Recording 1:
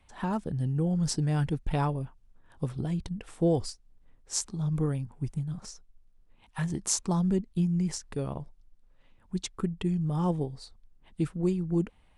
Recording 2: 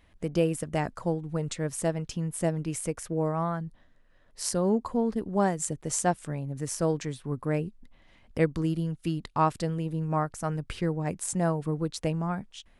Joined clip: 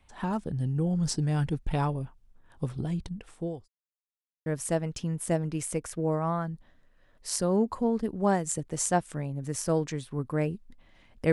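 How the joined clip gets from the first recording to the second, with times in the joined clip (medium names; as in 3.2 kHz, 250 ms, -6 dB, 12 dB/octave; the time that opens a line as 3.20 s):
recording 1
2.76–3.68 s: fade out equal-power
3.68–4.46 s: mute
4.46 s: go over to recording 2 from 1.59 s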